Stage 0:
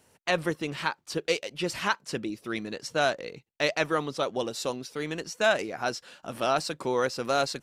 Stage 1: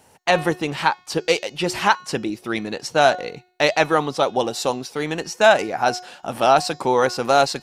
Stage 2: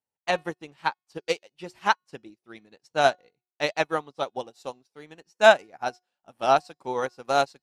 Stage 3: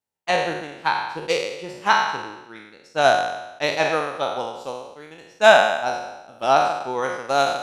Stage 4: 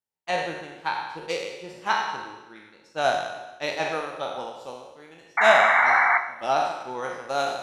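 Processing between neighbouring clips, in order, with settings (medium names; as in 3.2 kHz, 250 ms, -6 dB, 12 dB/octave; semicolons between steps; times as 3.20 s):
peaking EQ 810 Hz +9 dB 0.4 oct; de-hum 363.5 Hz, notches 21; trim +7.5 dB
upward expansion 2.5:1, over -37 dBFS
spectral sustain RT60 0.98 s; trim +1.5 dB
painted sound noise, 5.37–6.18 s, 690–2300 Hz -13 dBFS; two-slope reverb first 0.74 s, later 2.1 s, DRR 6.5 dB; trim -7 dB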